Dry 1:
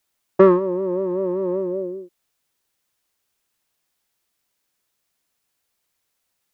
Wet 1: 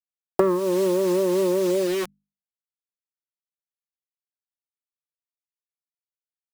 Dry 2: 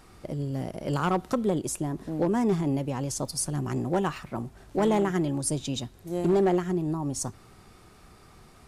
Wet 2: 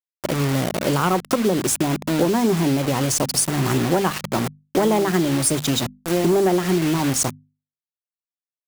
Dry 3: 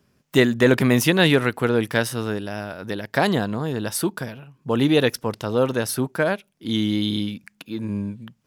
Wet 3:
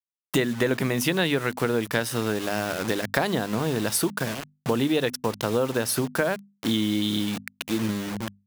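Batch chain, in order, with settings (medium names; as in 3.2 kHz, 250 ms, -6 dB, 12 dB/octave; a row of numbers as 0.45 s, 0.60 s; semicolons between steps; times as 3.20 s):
word length cut 6-bit, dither none; bass shelf 60 Hz -10 dB; compression 5:1, threshold -28 dBFS; hum notches 50/100/150/200/250 Hz; peak normalisation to -6 dBFS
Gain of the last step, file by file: +9.0 dB, +12.5 dB, +6.5 dB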